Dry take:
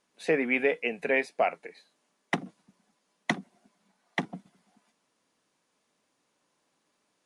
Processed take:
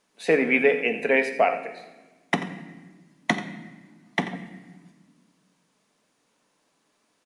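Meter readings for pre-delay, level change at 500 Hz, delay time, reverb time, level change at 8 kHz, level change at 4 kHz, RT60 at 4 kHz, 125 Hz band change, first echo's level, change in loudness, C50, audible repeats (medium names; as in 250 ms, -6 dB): 4 ms, +6.0 dB, 87 ms, 1.3 s, +5.0 dB, +5.0 dB, 0.95 s, +5.5 dB, -13.0 dB, +5.5 dB, 9.5 dB, 1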